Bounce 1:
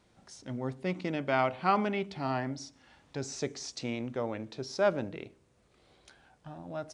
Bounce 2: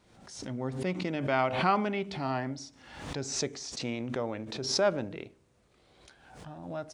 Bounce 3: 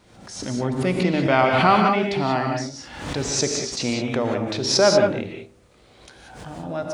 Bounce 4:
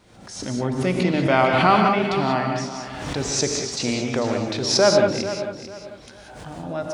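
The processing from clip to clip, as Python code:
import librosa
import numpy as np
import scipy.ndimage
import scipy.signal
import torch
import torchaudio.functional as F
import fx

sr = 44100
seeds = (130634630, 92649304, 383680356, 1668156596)

y1 = fx.pre_swell(x, sr, db_per_s=62.0)
y2 = fx.rev_gated(y1, sr, seeds[0], gate_ms=210, shape='rising', drr_db=2.5)
y2 = y2 * librosa.db_to_amplitude(9.0)
y3 = fx.echo_feedback(y2, sr, ms=445, feedback_pct=30, wet_db=-12)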